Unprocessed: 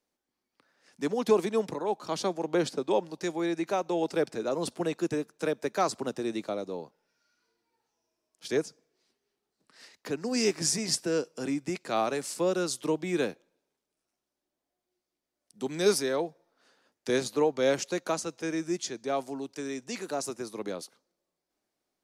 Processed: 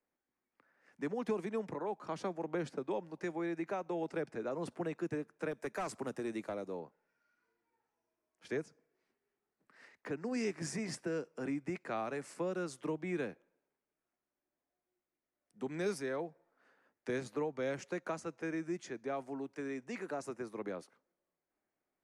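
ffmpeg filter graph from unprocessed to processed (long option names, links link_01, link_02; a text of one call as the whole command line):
ffmpeg -i in.wav -filter_complex "[0:a]asettb=1/sr,asplit=3[link_01][link_02][link_03];[link_01]atrim=end=5.514[link_04];[link_02]atrim=start=5.51:end=6.8,asetpts=PTS-STARTPTS,afade=type=in:duration=0.004:curve=qsin,afade=type=out:start_time=1.286:duration=0.004:curve=qsin,aemphasis=mode=production:type=50fm,asoftclip=type=hard:threshold=-24.5dB[link_05];[link_03]atrim=start=6.796[link_06];[link_04][link_05]acrossfade=duration=0.004:curve1=hsin:curve2=qsin[link_07];[link_07][link_06]acrossfade=duration=0.004:curve1=qsin:curve2=hsin,lowpass=frequency=11000:width=0.5412,lowpass=frequency=11000:width=1.3066,highshelf=frequency=2800:width_type=q:width=1.5:gain=-11,acrossover=split=190|3000[link_08][link_09][link_10];[link_09]acompressor=threshold=-32dB:ratio=3[link_11];[link_08][link_11][link_10]amix=inputs=3:normalize=0,volume=-4.5dB" out.wav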